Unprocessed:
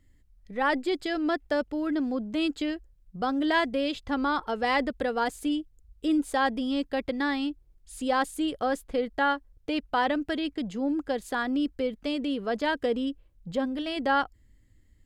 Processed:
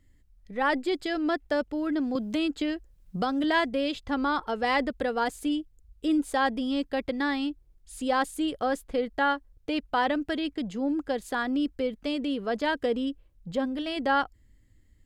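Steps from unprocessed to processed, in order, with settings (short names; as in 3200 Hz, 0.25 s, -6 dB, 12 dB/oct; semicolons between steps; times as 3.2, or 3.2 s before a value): 2.15–3.44 three-band squash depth 70%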